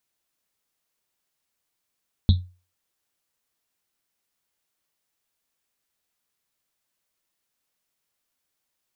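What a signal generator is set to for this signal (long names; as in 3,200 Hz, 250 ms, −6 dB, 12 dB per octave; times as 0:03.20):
drum after Risset, pitch 90 Hz, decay 0.33 s, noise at 3,800 Hz, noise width 660 Hz, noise 10%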